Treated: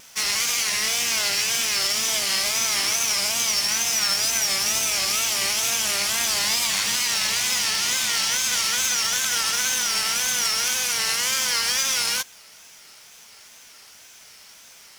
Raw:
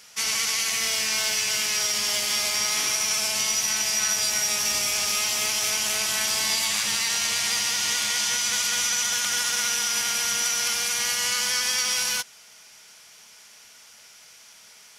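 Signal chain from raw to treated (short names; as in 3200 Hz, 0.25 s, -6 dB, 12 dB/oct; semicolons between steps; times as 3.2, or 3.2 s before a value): companded quantiser 4-bit; wow and flutter 130 cents; gain +1.5 dB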